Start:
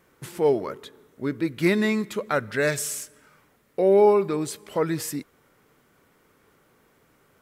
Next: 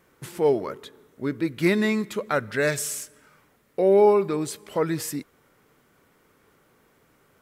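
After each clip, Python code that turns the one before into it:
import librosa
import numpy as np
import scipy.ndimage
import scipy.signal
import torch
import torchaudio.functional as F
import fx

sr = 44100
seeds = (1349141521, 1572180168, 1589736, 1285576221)

y = x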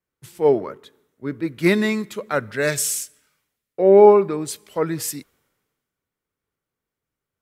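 y = fx.band_widen(x, sr, depth_pct=70)
y = y * librosa.db_to_amplitude(1.0)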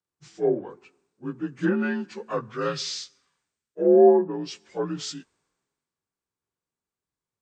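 y = fx.partial_stretch(x, sr, pct=86)
y = fx.env_lowpass_down(y, sr, base_hz=1200.0, full_db=-13.0)
y = y * librosa.db_to_amplitude(-4.5)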